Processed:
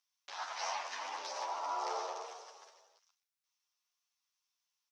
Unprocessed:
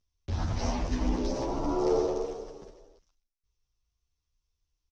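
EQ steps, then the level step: high-pass 850 Hz 24 dB/octave; dynamic bell 6.7 kHz, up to -4 dB, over -55 dBFS, Q 0.75; +2.5 dB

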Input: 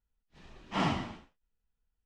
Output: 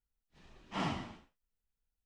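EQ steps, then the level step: treble shelf 7.4 kHz +4.5 dB; -6.0 dB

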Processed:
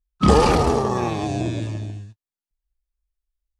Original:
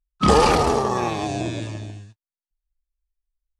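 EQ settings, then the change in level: peaking EQ 72 Hz +6.5 dB 2.3 oct; peaking EQ 260 Hz +3.5 dB 2.2 oct; -2.5 dB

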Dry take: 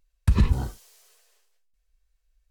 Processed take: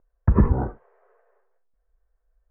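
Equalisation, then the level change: steep low-pass 1.7 kHz 36 dB/octave; peaking EQ 490 Hz +11 dB 2.6 oct; 0.0 dB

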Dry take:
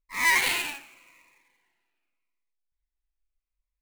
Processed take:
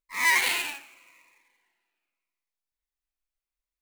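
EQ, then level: bass shelf 190 Hz -11.5 dB; 0.0 dB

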